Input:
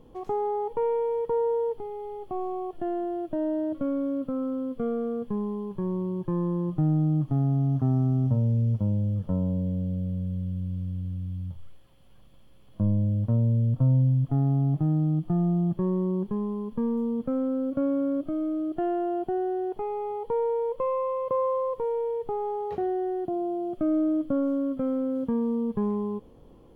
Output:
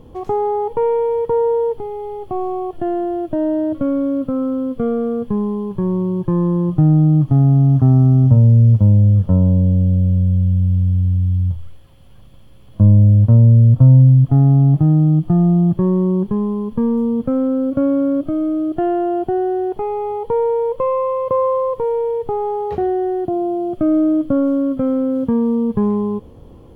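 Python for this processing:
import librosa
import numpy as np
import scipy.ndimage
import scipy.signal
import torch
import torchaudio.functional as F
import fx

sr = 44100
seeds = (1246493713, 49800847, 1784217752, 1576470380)

y = fx.peak_eq(x, sr, hz=82.0, db=8.5, octaves=1.3)
y = y * 10.0 ** (9.0 / 20.0)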